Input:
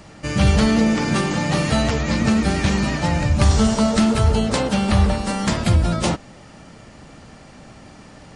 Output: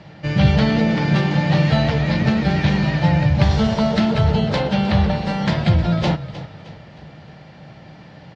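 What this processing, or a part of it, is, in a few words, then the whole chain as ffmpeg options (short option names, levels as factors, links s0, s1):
frequency-shifting delay pedal into a guitar cabinet: -filter_complex "[0:a]asplit=5[s0][s1][s2][s3][s4];[s1]adelay=310,afreqshift=-35,volume=0.188[s5];[s2]adelay=620,afreqshift=-70,volume=0.0851[s6];[s3]adelay=930,afreqshift=-105,volume=0.038[s7];[s4]adelay=1240,afreqshift=-140,volume=0.0172[s8];[s0][s5][s6][s7][s8]amix=inputs=5:normalize=0,highpass=90,equalizer=f=150:t=q:w=4:g=8,equalizer=f=250:t=q:w=4:g=-9,equalizer=f=400:t=q:w=4:g=-4,equalizer=f=1200:t=q:w=4:g=-8,equalizer=f=2600:t=q:w=4:g=-3,lowpass=f=4200:w=0.5412,lowpass=f=4200:w=1.3066,volume=1.26"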